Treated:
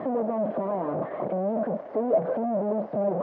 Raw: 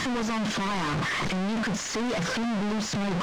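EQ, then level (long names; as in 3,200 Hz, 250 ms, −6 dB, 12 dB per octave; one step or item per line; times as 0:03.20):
high-pass filter 230 Hz 12 dB per octave
low-pass with resonance 620 Hz, resonance Q 4.9
high-frequency loss of the air 210 metres
0.0 dB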